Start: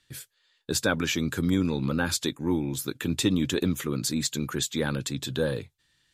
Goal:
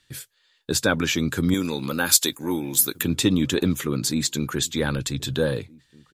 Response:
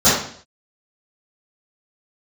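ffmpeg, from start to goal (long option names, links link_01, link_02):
-filter_complex "[0:a]asettb=1/sr,asplit=3[link_01][link_02][link_03];[link_01]atrim=end=1.544[link_04];[link_02]atrim=start=1.54:end=3.03,asetpts=PTS-STARTPTS,afade=type=in:duration=0.004:curve=qsin,afade=type=out:start_time=1.486:duration=0.004:curve=qsin,aemphasis=mode=production:type=bsi[link_05];[link_03]atrim=start=3.026[link_06];[link_04][link_05]acrossfade=duration=0.004:curve1=hsin:curve2=qsin[link_07];[link_07][link_06]acrossfade=duration=0.004:curve1=qsin:curve2=hsin,asplit=2[link_08][link_09];[link_09]adelay=1574,volume=-25dB,highshelf=frequency=4000:gain=-35.4[link_10];[link_08][link_10]amix=inputs=2:normalize=0,asettb=1/sr,asplit=3[link_11][link_12][link_13];[link_11]atrim=end=4.464[link_14];[link_12]atrim=start=4.46:end=5.34,asetpts=PTS-STARTPTS,afade=type=in:duration=0.004:curve=qsin,afade=type=out:start_time=0.876:duration=0.004:curve=qsin,asubboost=boost=12:cutoff=98[link_15];[link_13]atrim=start=5.336[link_16];[link_14][link_15]acrossfade=duration=0.004:curve1=hsin:curve2=qsin[link_17];[link_17][link_16]acrossfade=duration=0.004:curve1=qsin:curve2=hsin,volume=4dB"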